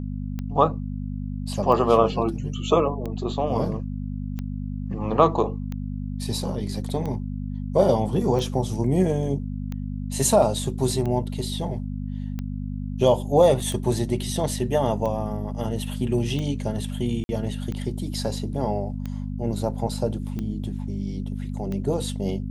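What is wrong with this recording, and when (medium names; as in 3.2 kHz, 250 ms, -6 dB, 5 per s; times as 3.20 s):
hum 50 Hz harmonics 5 -30 dBFS
tick 45 rpm -19 dBFS
13.60 s: dropout 2.5 ms
17.24–17.29 s: dropout 51 ms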